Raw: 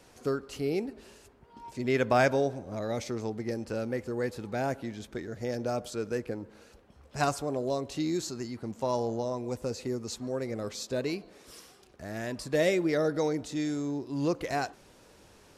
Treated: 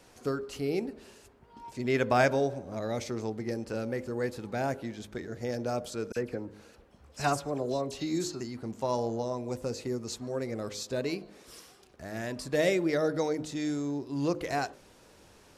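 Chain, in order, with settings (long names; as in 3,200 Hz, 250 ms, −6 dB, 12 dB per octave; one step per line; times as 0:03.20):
hum removal 51.17 Hz, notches 12
0:06.12–0:08.41: all-pass dispersion lows, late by 43 ms, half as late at 3,000 Hz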